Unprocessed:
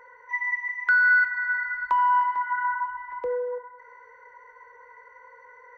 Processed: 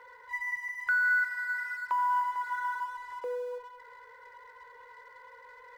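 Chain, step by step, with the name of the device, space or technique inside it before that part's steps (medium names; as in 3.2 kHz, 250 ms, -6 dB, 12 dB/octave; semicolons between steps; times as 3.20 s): phone line with mismatched companding (band-pass 310–3400 Hz; companding laws mixed up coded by mu); trim -7.5 dB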